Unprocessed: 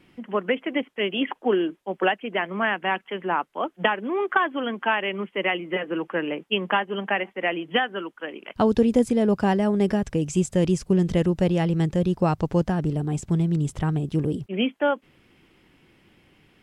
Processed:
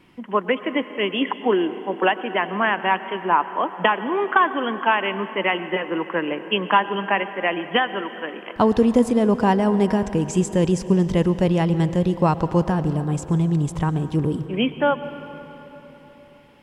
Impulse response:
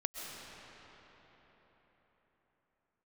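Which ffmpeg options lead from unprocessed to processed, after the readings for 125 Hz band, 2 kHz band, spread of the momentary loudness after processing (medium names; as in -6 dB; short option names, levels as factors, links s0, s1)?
+2.5 dB, +2.5 dB, 7 LU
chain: -filter_complex "[0:a]equalizer=f=1000:t=o:w=0.28:g=8.5,asplit=2[s0][s1];[1:a]atrim=start_sample=2205,asetrate=52920,aresample=44100[s2];[s1][s2]afir=irnorm=-1:irlink=0,volume=0.398[s3];[s0][s3]amix=inputs=2:normalize=0"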